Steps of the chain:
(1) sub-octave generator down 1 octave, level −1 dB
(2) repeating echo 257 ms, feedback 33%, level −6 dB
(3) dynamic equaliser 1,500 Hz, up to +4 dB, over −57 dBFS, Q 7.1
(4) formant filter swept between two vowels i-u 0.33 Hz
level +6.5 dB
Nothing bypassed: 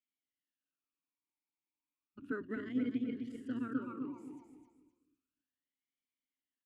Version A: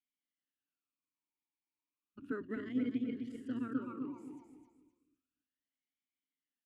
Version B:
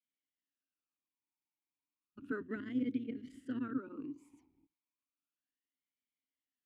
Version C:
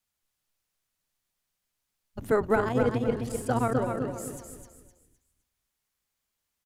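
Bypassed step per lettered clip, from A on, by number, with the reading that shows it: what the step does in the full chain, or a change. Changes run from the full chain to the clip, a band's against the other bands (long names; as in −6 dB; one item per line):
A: 3, 2 kHz band −2.5 dB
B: 2, change in momentary loudness spread −3 LU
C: 4, 250 Hz band −14.5 dB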